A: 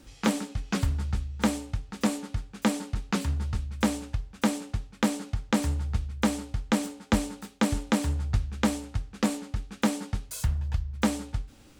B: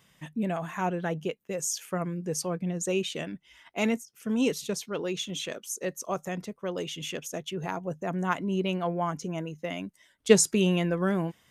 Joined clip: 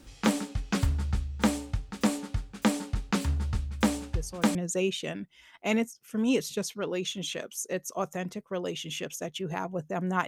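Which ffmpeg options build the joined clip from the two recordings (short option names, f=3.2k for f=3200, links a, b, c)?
-filter_complex "[1:a]asplit=2[a][b];[0:a]apad=whole_dur=10.27,atrim=end=10.27,atrim=end=4.552[c];[b]atrim=start=2.668:end=8.39[d];[a]atrim=start=2.26:end=2.67,asetpts=PTS-STARTPTS,volume=-8.5dB,afade=t=in:d=0.004:c=hsin,afade=t=out:st=0.406:d=0.004:c=hsin,adelay=4140[e];[c][d]acrossfade=d=0.004:c1=hsin:c2=hsin[f];[f][e]amix=inputs=2:normalize=0"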